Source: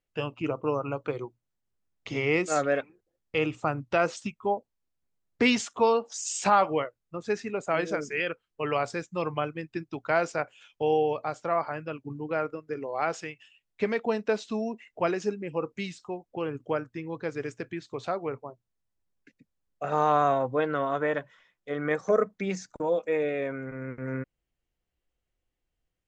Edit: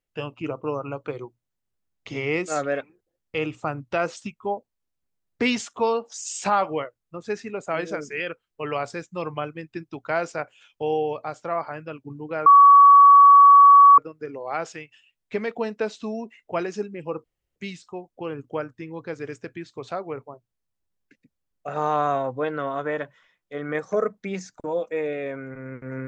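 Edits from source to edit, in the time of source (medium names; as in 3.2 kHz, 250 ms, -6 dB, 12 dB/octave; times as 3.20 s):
12.46 s: add tone 1.13 kHz -7.5 dBFS 1.52 s
15.72 s: insert room tone 0.32 s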